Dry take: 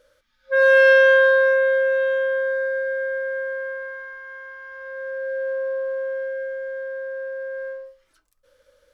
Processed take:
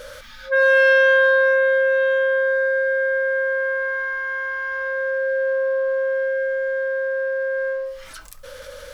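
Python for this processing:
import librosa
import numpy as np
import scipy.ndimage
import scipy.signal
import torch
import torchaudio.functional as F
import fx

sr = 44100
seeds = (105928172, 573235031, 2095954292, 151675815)

y = fx.peak_eq(x, sr, hz=350.0, db=-13.0, octaves=0.58)
y = fx.env_flatten(y, sr, amount_pct=50)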